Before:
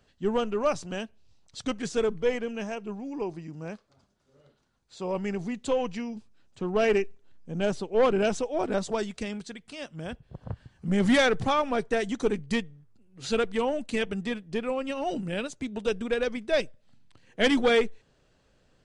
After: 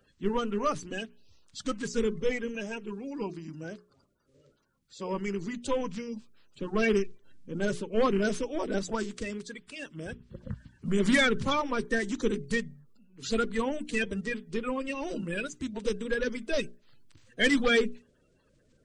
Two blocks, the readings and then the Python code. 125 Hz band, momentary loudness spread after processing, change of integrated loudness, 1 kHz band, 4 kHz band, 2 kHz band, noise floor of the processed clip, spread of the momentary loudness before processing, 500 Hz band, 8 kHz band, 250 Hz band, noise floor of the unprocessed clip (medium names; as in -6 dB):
-2.0 dB, 16 LU, -2.5 dB, -3.5 dB, -1.5 dB, +1.0 dB, -68 dBFS, 17 LU, -4.0 dB, +0.5 dB, -1.5 dB, -67 dBFS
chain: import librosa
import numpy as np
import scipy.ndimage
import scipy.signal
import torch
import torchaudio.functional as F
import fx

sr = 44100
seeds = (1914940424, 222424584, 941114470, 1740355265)

y = fx.spec_quant(x, sr, step_db=30)
y = fx.peak_eq(y, sr, hz=740.0, db=-12.0, octaves=0.4)
y = fx.hum_notches(y, sr, base_hz=60, count=7)